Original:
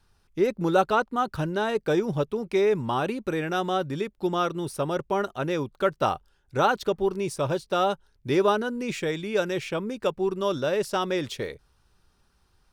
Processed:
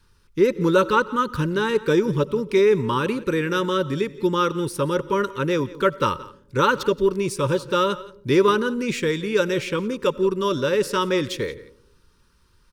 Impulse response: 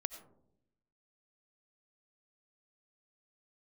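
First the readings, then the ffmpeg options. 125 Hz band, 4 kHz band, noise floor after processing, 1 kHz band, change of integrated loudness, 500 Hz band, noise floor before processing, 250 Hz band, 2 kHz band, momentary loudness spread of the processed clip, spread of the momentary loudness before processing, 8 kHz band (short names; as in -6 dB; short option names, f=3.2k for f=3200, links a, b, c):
+5.5 dB, +5.5 dB, -59 dBFS, +2.5 dB, +4.5 dB, +4.5 dB, -66 dBFS, +5.5 dB, +5.5 dB, 6 LU, 6 LU, +5.5 dB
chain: -filter_complex "[0:a]asuperstop=centerf=710:order=12:qfactor=2.4,aecho=1:1:174:0.106,asplit=2[a][b];[1:a]atrim=start_sample=2205[c];[b][c]afir=irnorm=-1:irlink=0,volume=-7dB[d];[a][d]amix=inputs=2:normalize=0,volume=2.5dB"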